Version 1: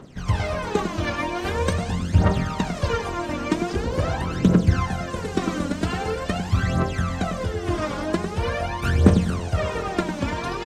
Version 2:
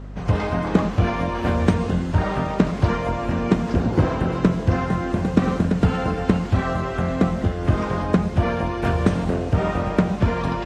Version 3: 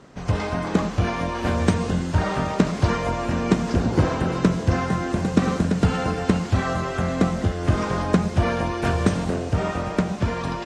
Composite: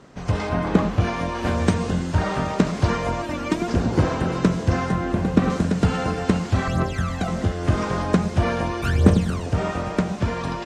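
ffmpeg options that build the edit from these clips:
-filter_complex "[1:a]asplit=2[s0][s1];[0:a]asplit=3[s2][s3][s4];[2:a]asplit=6[s5][s6][s7][s8][s9][s10];[s5]atrim=end=0.492[s11];[s0]atrim=start=0.488:end=1.002[s12];[s6]atrim=start=0.998:end=3.222[s13];[s2]atrim=start=3.218:end=3.682[s14];[s7]atrim=start=3.678:end=4.922[s15];[s1]atrim=start=4.918:end=5.502[s16];[s8]atrim=start=5.498:end=6.682[s17];[s3]atrim=start=6.678:end=7.282[s18];[s9]atrim=start=7.278:end=8.822[s19];[s4]atrim=start=8.818:end=9.462[s20];[s10]atrim=start=9.458[s21];[s11][s12]acrossfade=d=0.004:c1=hsin:c2=hsin[s22];[s22][s13]acrossfade=d=0.004:c1=hsin:c2=hsin[s23];[s23][s14]acrossfade=d=0.004:c1=hsin:c2=hsin[s24];[s24][s15]acrossfade=d=0.004:c1=hsin:c2=hsin[s25];[s25][s16]acrossfade=d=0.004:c1=hsin:c2=hsin[s26];[s26][s17]acrossfade=d=0.004:c1=hsin:c2=hsin[s27];[s27][s18]acrossfade=d=0.004:c1=hsin:c2=hsin[s28];[s28][s19]acrossfade=d=0.004:c1=hsin:c2=hsin[s29];[s29][s20]acrossfade=d=0.004:c1=hsin:c2=hsin[s30];[s30][s21]acrossfade=d=0.004:c1=hsin:c2=hsin"

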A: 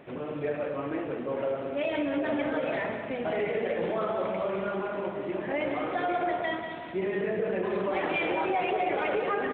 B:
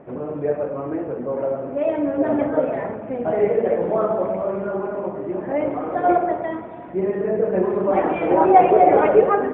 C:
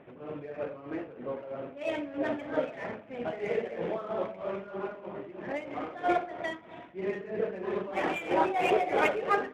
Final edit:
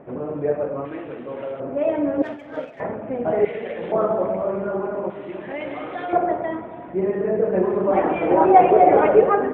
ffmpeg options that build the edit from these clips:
-filter_complex "[0:a]asplit=3[s0][s1][s2];[1:a]asplit=5[s3][s4][s5][s6][s7];[s3]atrim=end=0.852[s8];[s0]atrim=start=0.848:end=1.602[s9];[s4]atrim=start=1.598:end=2.222[s10];[2:a]atrim=start=2.218:end=2.802[s11];[s5]atrim=start=2.798:end=3.452[s12];[s1]atrim=start=3.448:end=3.922[s13];[s6]atrim=start=3.918:end=5.102[s14];[s2]atrim=start=5.098:end=6.132[s15];[s7]atrim=start=6.128[s16];[s8][s9]acrossfade=d=0.004:c1=hsin:c2=hsin[s17];[s17][s10]acrossfade=d=0.004:c1=hsin:c2=hsin[s18];[s18][s11]acrossfade=d=0.004:c1=hsin:c2=hsin[s19];[s19][s12]acrossfade=d=0.004:c1=hsin:c2=hsin[s20];[s20][s13]acrossfade=d=0.004:c1=hsin:c2=hsin[s21];[s21][s14]acrossfade=d=0.004:c1=hsin:c2=hsin[s22];[s22][s15]acrossfade=d=0.004:c1=hsin:c2=hsin[s23];[s23][s16]acrossfade=d=0.004:c1=hsin:c2=hsin"

